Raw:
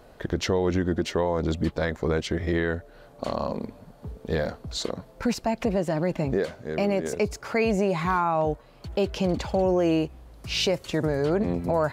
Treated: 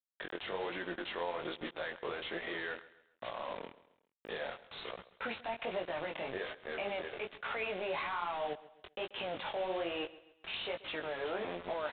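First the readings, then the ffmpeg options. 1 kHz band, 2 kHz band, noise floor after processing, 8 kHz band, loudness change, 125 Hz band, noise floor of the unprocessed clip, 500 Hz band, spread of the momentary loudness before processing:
-10.0 dB, -6.0 dB, -75 dBFS, under -40 dB, -13.0 dB, -27.0 dB, -52 dBFS, -13.5 dB, 9 LU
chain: -filter_complex "[0:a]aemphasis=mode=production:type=75kf,anlmdn=0.398,highpass=630,alimiter=level_in=2.5dB:limit=-24dB:level=0:latency=1:release=61,volume=-2.5dB,aresample=11025,acrusher=bits=6:mix=0:aa=0.000001,aresample=44100,flanger=delay=16.5:depth=6.6:speed=1.2,asplit=2[a][b];[b]aecho=0:1:134|268|402:0.126|0.0516|0.0212[c];[a][c]amix=inputs=2:normalize=0,aresample=8000,aresample=44100,volume=1.5dB"

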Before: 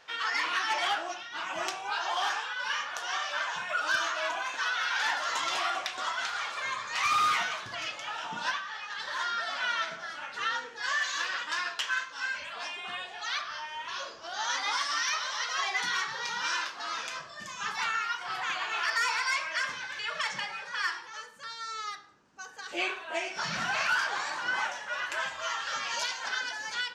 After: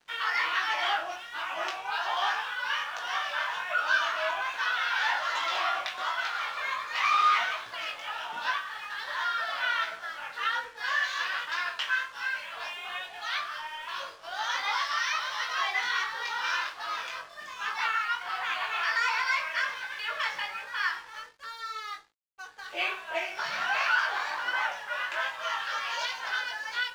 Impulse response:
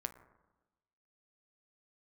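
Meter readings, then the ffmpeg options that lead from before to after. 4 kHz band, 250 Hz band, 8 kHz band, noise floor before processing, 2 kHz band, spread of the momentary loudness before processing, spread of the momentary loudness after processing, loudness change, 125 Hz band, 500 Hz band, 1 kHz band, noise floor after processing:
0.0 dB, n/a, -7.0 dB, -45 dBFS, +2.0 dB, 9 LU, 10 LU, +1.5 dB, under -10 dB, +0.5 dB, +2.0 dB, -46 dBFS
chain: -filter_complex "[0:a]acrossover=split=410 4700:gain=0.141 1 0.126[a][b][c];[a][b][c]amix=inputs=3:normalize=0,aeval=exprs='sgn(val(0))*max(abs(val(0))-0.00178,0)':c=same,flanger=delay=17.5:depth=4.6:speed=1.3,volume=5.5dB"

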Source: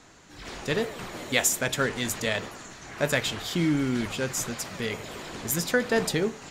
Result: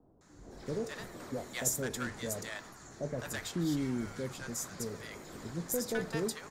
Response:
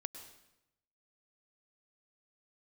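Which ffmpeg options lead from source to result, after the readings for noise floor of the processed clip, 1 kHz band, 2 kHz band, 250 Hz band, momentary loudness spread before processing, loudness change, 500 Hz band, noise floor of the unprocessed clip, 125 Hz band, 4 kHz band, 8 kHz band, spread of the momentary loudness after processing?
-57 dBFS, -10.5 dB, -13.0 dB, -7.5 dB, 13 LU, -9.5 dB, -9.0 dB, -48 dBFS, -7.5 dB, -13.5 dB, -8.0 dB, 12 LU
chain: -filter_complex "[0:a]equalizer=f=2.8k:t=o:w=0.89:g=-11.5,acrossover=split=120|3800[a][b][c];[b]asoftclip=type=hard:threshold=-21dB[d];[a][d][c]amix=inputs=3:normalize=0,acrossover=split=770[e][f];[f]adelay=210[g];[e][g]amix=inputs=2:normalize=0,volume=-7dB"

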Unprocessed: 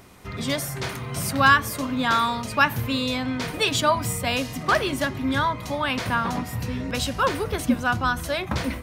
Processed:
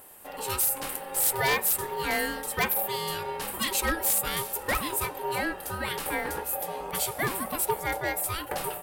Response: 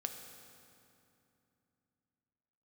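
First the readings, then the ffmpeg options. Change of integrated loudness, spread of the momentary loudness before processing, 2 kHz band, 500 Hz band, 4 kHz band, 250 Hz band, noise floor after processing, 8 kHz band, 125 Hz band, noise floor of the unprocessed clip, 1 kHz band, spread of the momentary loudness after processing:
-4.0 dB, 8 LU, -7.0 dB, -4.5 dB, -6.5 dB, -12.0 dB, -41 dBFS, +4.0 dB, -12.0 dB, -35 dBFS, -7.0 dB, 8 LU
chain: -af "aexciter=amount=10:drive=3.3:freq=8.5k,aeval=exprs='val(0)*sin(2*PI*670*n/s)':c=same,aeval=exprs='0.237*(abs(mod(val(0)/0.237+3,4)-2)-1)':c=same,volume=-4dB"

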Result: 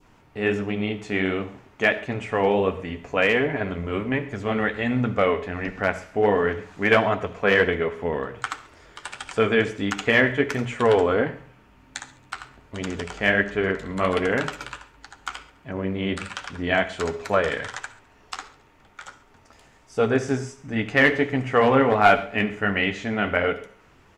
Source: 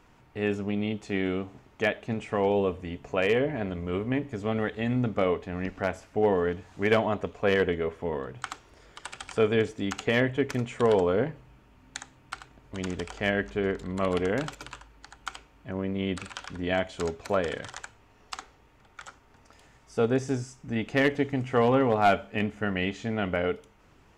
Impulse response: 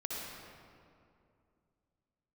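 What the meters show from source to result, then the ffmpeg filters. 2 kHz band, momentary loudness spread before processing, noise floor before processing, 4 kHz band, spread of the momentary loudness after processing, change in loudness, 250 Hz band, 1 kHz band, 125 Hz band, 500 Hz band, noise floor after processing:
+9.5 dB, 17 LU, -59 dBFS, +6.0 dB, 19 LU, +5.0 dB, +3.0 dB, +6.0 dB, +2.5 dB, +4.0 dB, -55 dBFS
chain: -filter_complex "[0:a]flanger=delay=6.4:depth=8.9:regen=-43:speed=1.4:shape=triangular,adynamicequalizer=threshold=0.00501:dfrequency=1700:dqfactor=0.9:tfrequency=1700:tqfactor=0.9:attack=5:release=100:ratio=0.375:range=3.5:mode=boostabove:tftype=bell,bandreject=f=60:t=h:w=6,bandreject=f=120:t=h:w=6,bandreject=f=180:t=h:w=6,aecho=1:1:70|140|210|280:0.0794|0.0469|0.0277|0.0163,asplit=2[a][b];[1:a]atrim=start_sample=2205,atrim=end_sample=6174[c];[b][c]afir=irnorm=-1:irlink=0,volume=-11.5dB[d];[a][d]amix=inputs=2:normalize=0,volume=5.5dB"

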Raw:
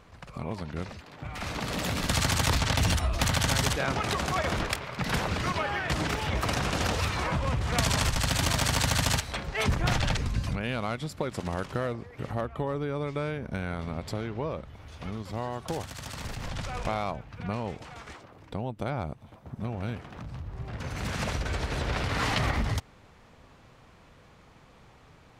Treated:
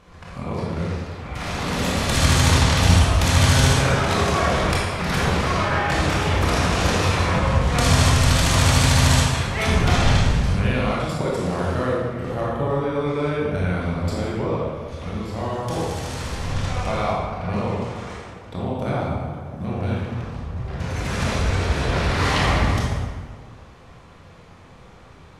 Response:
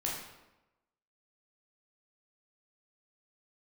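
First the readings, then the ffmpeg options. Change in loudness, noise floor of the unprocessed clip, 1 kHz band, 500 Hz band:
+9.0 dB, -55 dBFS, +8.5 dB, +9.5 dB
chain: -filter_complex "[1:a]atrim=start_sample=2205,asetrate=24255,aresample=44100[a];[0:a][a]afir=irnorm=-1:irlink=0"

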